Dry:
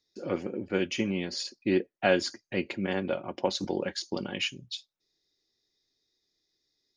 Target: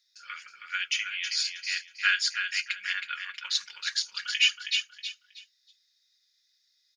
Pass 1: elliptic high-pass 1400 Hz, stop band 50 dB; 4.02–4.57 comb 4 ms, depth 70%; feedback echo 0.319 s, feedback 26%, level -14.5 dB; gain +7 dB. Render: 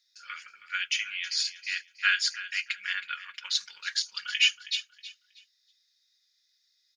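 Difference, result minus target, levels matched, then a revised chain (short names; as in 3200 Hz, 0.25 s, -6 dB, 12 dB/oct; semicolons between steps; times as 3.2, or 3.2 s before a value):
echo-to-direct -7.5 dB
elliptic high-pass 1400 Hz, stop band 50 dB; 4.02–4.57 comb 4 ms, depth 70%; feedback echo 0.319 s, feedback 26%, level -7 dB; gain +7 dB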